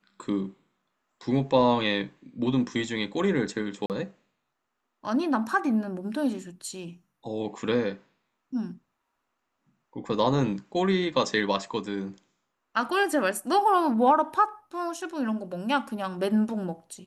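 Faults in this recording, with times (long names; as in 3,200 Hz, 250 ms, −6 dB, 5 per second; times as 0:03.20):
0:03.86–0:03.90: drop-out 38 ms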